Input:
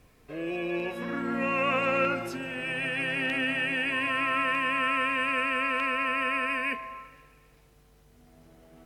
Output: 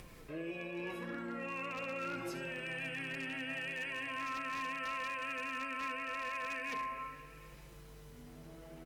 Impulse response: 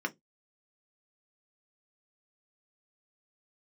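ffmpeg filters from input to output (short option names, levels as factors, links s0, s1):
-filter_complex "[0:a]areverse,acompressor=threshold=0.0112:ratio=6,areverse,bandreject=f=720:w=12,asplit=2[s0][s1];[s1]aecho=0:1:38|74:0.178|0.251[s2];[s0][s2]amix=inputs=2:normalize=0,acompressor=mode=upward:threshold=0.00447:ratio=2.5,flanger=delay=5.5:depth=1.6:regen=-28:speed=0.79:shape=triangular,aeval=exprs='0.0141*(abs(mod(val(0)/0.0141+3,4)-2)-1)':c=same,volume=1.58"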